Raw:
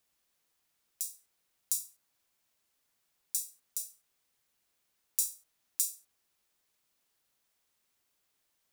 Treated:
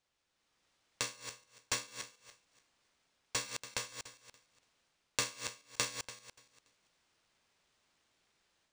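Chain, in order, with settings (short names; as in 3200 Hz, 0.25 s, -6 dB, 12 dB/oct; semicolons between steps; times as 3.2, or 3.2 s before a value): regenerating reverse delay 0.144 s, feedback 44%, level -8 dB; AGC gain up to 7 dB; decimation joined by straight lines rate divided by 3×; gain -5 dB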